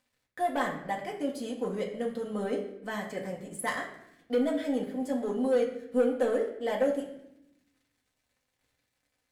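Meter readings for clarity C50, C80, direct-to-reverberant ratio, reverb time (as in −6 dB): 7.5 dB, 10.0 dB, −2.0 dB, 0.80 s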